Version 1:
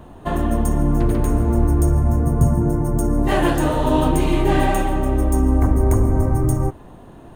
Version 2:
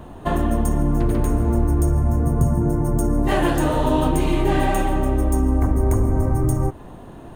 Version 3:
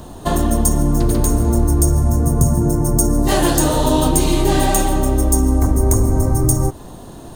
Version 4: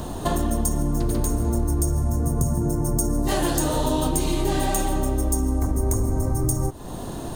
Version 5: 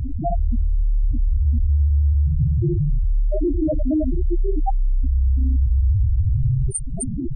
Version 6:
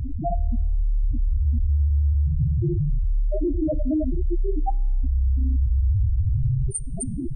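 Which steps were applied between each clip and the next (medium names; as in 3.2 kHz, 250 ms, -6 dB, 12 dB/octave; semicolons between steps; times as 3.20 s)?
compression 2:1, threshold -20 dBFS, peak gain reduction 6 dB; trim +2.5 dB
resonant high shelf 3.4 kHz +11 dB, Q 1.5; trim +3.5 dB
compression 2.5:1, threshold -29 dBFS, peak gain reduction 13.5 dB; trim +4 dB
feedback echo behind a high-pass 260 ms, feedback 74%, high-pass 1.6 kHz, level -4 dB; loudest bins only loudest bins 2; level flattener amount 50%; trim +7 dB
feedback comb 100 Hz, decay 1 s, harmonics all, mix 30%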